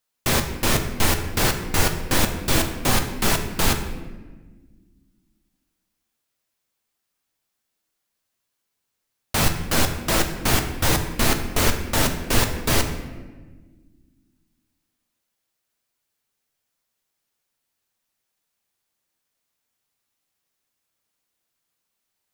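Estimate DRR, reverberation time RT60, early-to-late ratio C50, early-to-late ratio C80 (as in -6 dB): 4.5 dB, 1.4 s, 8.5 dB, 10.5 dB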